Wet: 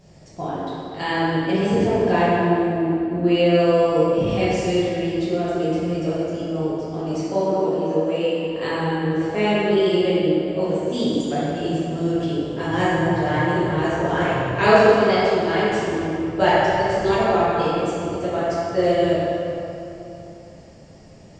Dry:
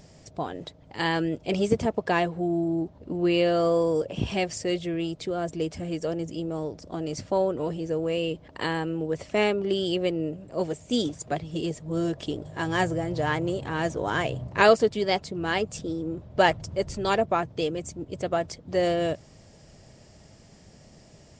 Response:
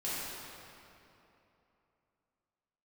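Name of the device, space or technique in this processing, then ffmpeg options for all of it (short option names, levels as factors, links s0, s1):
swimming-pool hall: -filter_complex "[0:a]asettb=1/sr,asplit=3[s0][s1][s2];[s0]atrim=end=7.164[s3];[s1]atrim=start=7.16:end=8.44,asetpts=PTS-STARTPTS,afade=t=in:d=0.004:c=qsin,afade=t=out:st=1.276:d=0.004:c=qsin,highpass=f=170:w=0.5412,highpass=f=170:w=1.3066[s4];[s2]atrim=start=8.436[s5];[s3][s4]acrossfade=d=0.004:c1=hsin:c2=qsin[s6];[s6][s5]acrossfade=d=0.004:c1=qsin:c2=hsin[s7];[1:a]atrim=start_sample=2205[s8];[s7][s8]afir=irnorm=-1:irlink=0,highshelf=f=4600:g=-6,volume=1.12"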